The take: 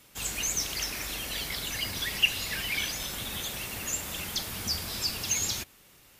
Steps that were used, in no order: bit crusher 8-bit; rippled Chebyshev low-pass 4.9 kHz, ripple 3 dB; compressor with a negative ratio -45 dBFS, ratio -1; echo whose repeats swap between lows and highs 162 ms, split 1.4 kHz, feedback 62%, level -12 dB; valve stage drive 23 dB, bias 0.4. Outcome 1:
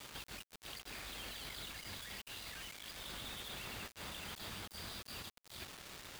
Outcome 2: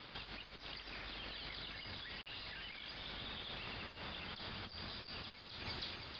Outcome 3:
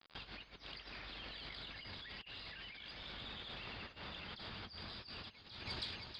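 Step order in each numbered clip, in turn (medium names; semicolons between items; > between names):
compressor with a negative ratio > echo whose repeats swap between lows and highs > valve stage > rippled Chebyshev low-pass > bit crusher; valve stage > echo whose repeats swap between lows and highs > compressor with a negative ratio > bit crusher > rippled Chebyshev low-pass; bit crusher > echo whose repeats swap between lows and highs > compressor with a negative ratio > rippled Chebyshev low-pass > valve stage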